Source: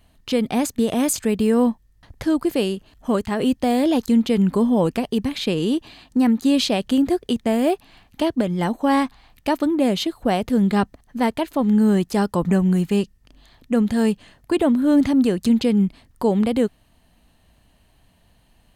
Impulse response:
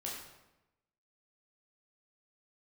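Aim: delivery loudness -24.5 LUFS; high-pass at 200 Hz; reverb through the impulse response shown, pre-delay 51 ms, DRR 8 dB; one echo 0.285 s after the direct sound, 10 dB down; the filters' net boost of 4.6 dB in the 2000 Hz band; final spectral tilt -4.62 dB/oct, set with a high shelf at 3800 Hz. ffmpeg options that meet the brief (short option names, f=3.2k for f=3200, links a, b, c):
-filter_complex "[0:a]highpass=200,equalizer=f=2k:t=o:g=7,highshelf=f=3.8k:g=-5,aecho=1:1:285:0.316,asplit=2[a][b];[1:a]atrim=start_sample=2205,adelay=51[c];[b][c]afir=irnorm=-1:irlink=0,volume=-8.5dB[d];[a][d]amix=inputs=2:normalize=0,volume=-3.5dB"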